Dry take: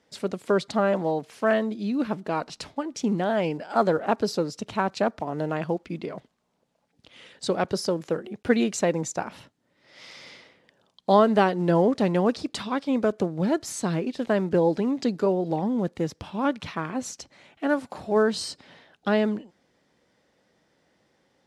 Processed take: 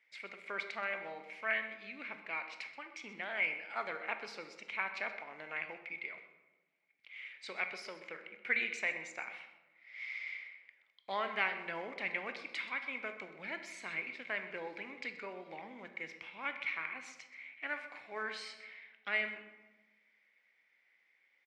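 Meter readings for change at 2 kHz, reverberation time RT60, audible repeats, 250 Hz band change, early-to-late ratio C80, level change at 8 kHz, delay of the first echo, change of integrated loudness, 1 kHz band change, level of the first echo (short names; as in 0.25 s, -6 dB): -1.0 dB, 1.2 s, 1, -28.5 dB, 10.5 dB, -20.0 dB, 0.127 s, -13.5 dB, -15.5 dB, -16.0 dB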